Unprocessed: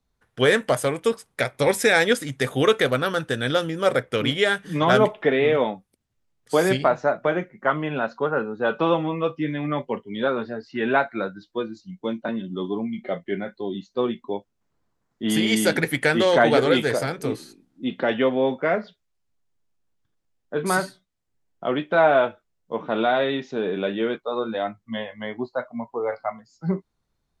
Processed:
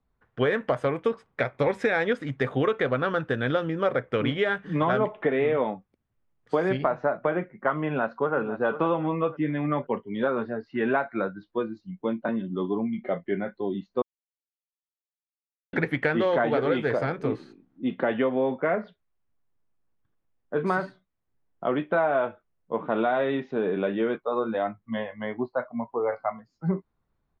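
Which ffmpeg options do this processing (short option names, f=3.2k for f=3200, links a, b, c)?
-filter_complex "[0:a]asplit=2[a][b];[b]afade=t=in:st=7.77:d=0.01,afade=t=out:st=8.36:d=0.01,aecho=0:1:500|1000|1500:0.223872|0.0671616|0.0201485[c];[a][c]amix=inputs=2:normalize=0,asplit=3[d][e][f];[d]atrim=end=14.02,asetpts=PTS-STARTPTS,afade=t=out:st=14.016:d=0.004:c=hsin[g];[e]atrim=start=14.02:end=15.73,asetpts=PTS-STARTPTS,volume=0[h];[f]atrim=start=15.73,asetpts=PTS-STARTPTS,afade=t=in:d=0.004:c=hsin[i];[g][h][i]concat=n=3:v=0:a=1,lowpass=2.1k,equalizer=f=1.1k:t=o:w=0.21:g=2.5,acompressor=threshold=-20dB:ratio=6"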